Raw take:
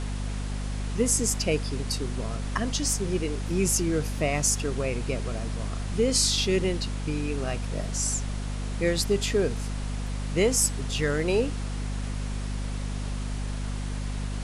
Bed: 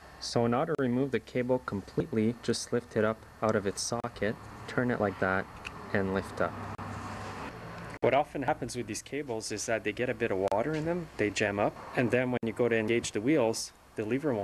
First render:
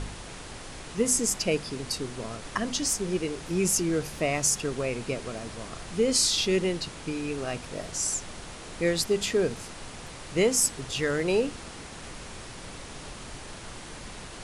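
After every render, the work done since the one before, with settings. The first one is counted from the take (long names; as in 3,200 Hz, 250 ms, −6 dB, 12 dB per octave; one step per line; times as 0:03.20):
hum removal 50 Hz, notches 5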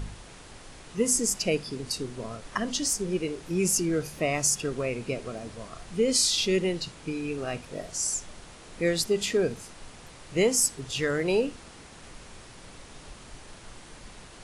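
noise reduction from a noise print 6 dB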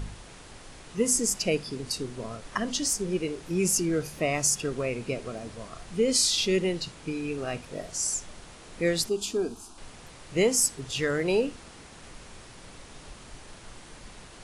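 0:09.09–0:09.78: phaser with its sweep stopped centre 530 Hz, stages 6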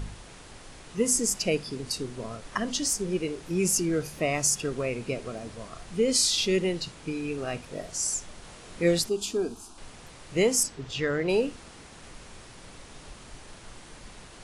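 0:08.42–0:08.99: double-tracking delay 23 ms −4 dB
0:10.63–0:11.29: high-frequency loss of the air 92 metres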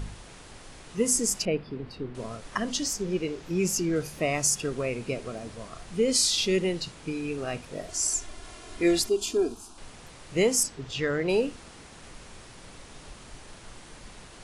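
0:01.45–0:02.15: high-frequency loss of the air 400 metres
0:02.83–0:03.96: parametric band 9,500 Hz −10 dB 0.49 octaves
0:07.88–0:09.55: comb filter 2.9 ms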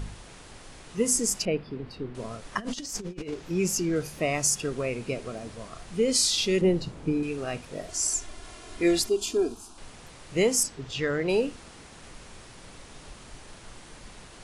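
0:02.58–0:03.34: compressor whose output falls as the input rises −34 dBFS, ratio −0.5
0:06.61–0:07.23: tilt shelving filter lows +7.5 dB, about 1,100 Hz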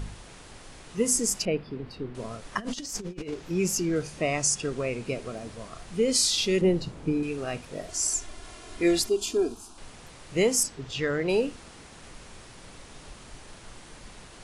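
0:04.02–0:05.05: Butterworth low-pass 9,800 Hz 48 dB per octave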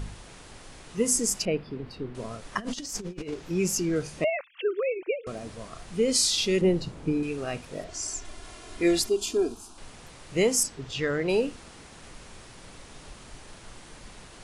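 0:04.24–0:05.27: three sine waves on the formant tracks
0:07.84–0:08.25: high-frequency loss of the air 76 metres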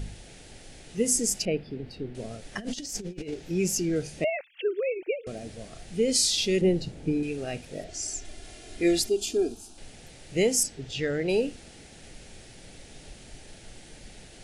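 parametric band 1,200 Hz −12 dB 0.55 octaves
notch filter 1,000 Hz, Q 5.4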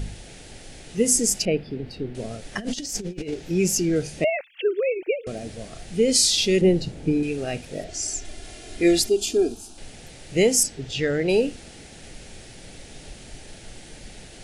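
level +5 dB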